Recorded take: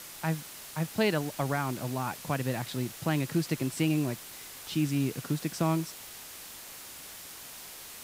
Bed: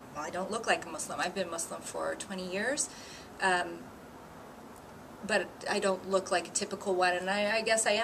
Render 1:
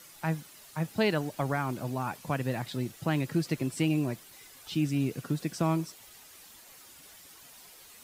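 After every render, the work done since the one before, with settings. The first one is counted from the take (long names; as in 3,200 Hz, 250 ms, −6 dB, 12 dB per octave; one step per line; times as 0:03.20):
broadband denoise 10 dB, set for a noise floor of −46 dBFS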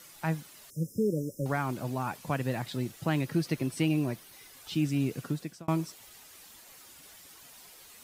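0:00.70–0:01.46: linear-phase brick-wall band-stop 590–5,000 Hz
0:03.25–0:04.54: notch filter 7,400 Hz, Q 8.5
0:05.25–0:05.68: fade out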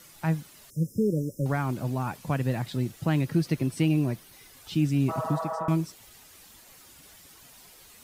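0:05.12–0:05.68: healed spectral selection 410–2,000 Hz after
low-shelf EQ 220 Hz +8 dB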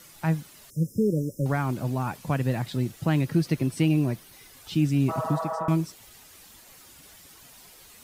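level +1.5 dB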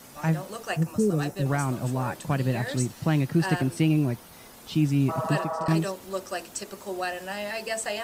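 mix in bed −3 dB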